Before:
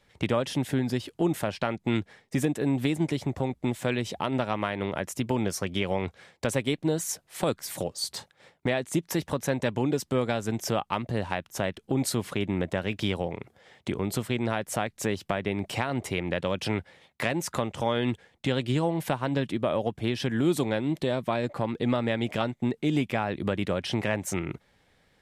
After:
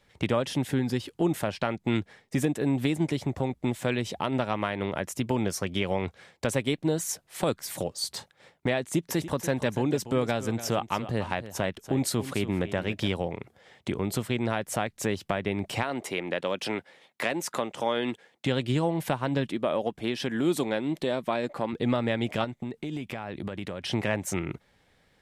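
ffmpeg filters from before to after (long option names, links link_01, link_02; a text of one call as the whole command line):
ffmpeg -i in.wav -filter_complex "[0:a]asettb=1/sr,asplit=3[link_01][link_02][link_03];[link_01]atrim=end=0.684[link_04];[link_02]atrim=start=0.68:end=1.2,asetpts=PTS-STARTPTS,afade=type=in:duration=0.004:curve=qsin,afade=type=out:start_time=0.516:duration=0.004:curve=qsin,asuperstop=centerf=640:order=4:qfactor=6.8[link_05];[link_03]atrim=start=1.196[link_06];[link_04][link_05]acrossfade=duration=0.004:curve1=hsin:curve2=qsin[link_07];[link_07][link_06]acrossfade=duration=0.004:curve1=qsin:curve2=hsin,asettb=1/sr,asplit=3[link_08][link_09][link_10];[link_08]atrim=end=8.804[link_11];[link_09]atrim=start=8.8:end=13.08,asetpts=PTS-STARTPTS,afade=type=in:duration=0.004:curve=qsin,afade=type=out:start_time=4.276:duration=0.004:curve=qsin,aecho=1:1:289:0.211,atrim=end_sample=188748[link_12];[link_10]atrim=start=13.076[link_13];[link_11][link_12]acrossfade=duration=0.004:curve1=hsin:curve2=qsin[link_14];[link_14][link_13]acrossfade=duration=0.004:curve1=qsin:curve2=hsin,asettb=1/sr,asplit=3[link_15][link_16][link_17];[link_15]atrim=end=15.834[link_18];[link_16]atrim=start=15.83:end=18.46,asetpts=PTS-STARTPTS,afade=type=in:duration=0.004:curve=qsin,afade=type=out:start_time=2.626:duration=0.004:curve=qsin,highpass=250[link_19];[link_17]atrim=start=18.456[link_20];[link_18][link_19]acrossfade=duration=0.004:curve1=hsin:curve2=qsin[link_21];[link_21][link_20]acrossfade=duration=0.004:curve1=qsin:curve2=hsin,asettb=1/sr,asplit=3[link_22][link_23][link_24];[link_22]atrim=end=19.464[link_25];[link_23]atrim=start=19.46:end=21.73,asetpts=PTS-STARTPTS,afade=type=in:duration=0.004:curve=qsin,afade=type=out:start_time=2.266:duration=0.004:curve=qsin,equalizer=frequency=100:width=1.4:gain=-11.5[link_26];[link_24]atrim=start=21.726[link_27];[link_25][link_26]acrossfade=duration=0.004:curve1=hsin:curve2=qsin[link_28];[link_28][link_27]acrossfade=duration=0.004:curve1=qsin:curve2=hsin,asettb=1/sr,asplit=3[link_29][link_30][link_31];[link_29]atrim=end=22.444[link_32];[link_30]atrim=start=22.44:end=23.84,asetpts=PTS-STARTPTS,afade=type=in:duration=0.004:curve=qsin,afade=type=out:start_time=1.396:duration=0.004:curve=qsin,acompressor=threshold=-30dB:ratio=6:attack=3.2:release=140:knee=1:detection=peak[link_33];[link_31]atrim=start=23.836[link_34];[link_32][link_33]acrossfade=duration=0.004:curve1=hsin:curve2=qsin[link_35];[link_35][link_34]acrossfade=duration=0.004:curve1=qsin:curve2=hsin" out.wav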